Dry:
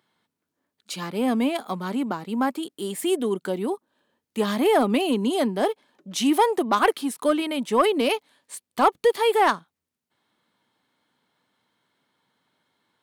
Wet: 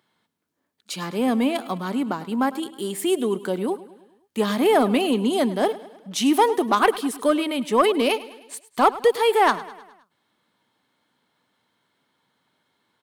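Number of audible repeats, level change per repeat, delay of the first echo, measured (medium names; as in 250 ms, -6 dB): 4, -5.5 dB, 104 ms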